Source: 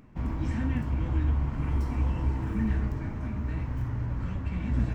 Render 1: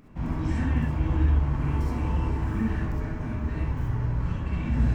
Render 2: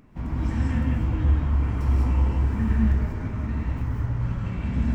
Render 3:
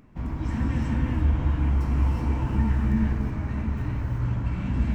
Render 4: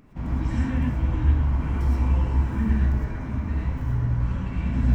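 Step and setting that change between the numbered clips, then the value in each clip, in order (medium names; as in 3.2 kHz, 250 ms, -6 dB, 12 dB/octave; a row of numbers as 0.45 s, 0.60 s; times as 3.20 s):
gated-style reverb, gate: 90 ms, 220 ms, 400 ms, 140 ms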